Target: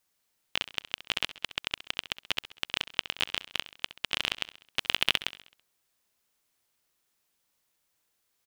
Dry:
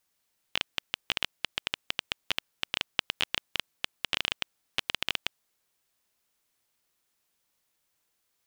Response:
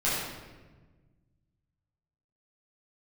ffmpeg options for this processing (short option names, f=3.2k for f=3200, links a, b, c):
-filter_complex "[0:a]asplit=3[a][b][c];[a]afade=t=out:st=4.79:d=0.02[d];[b]acontrast=83,afade=t=in:st=4.79:d=0.02,afade=t=out:st=5.22:d=0.02[e];[c]afade=t=in:st=5.22:d=0.02[f];[d][e][f]amix=inputs=3:normalize=0,aecho=1:1:66|132|198|264|330:0.168|0.0873|0.0454|0.0236|0.0123"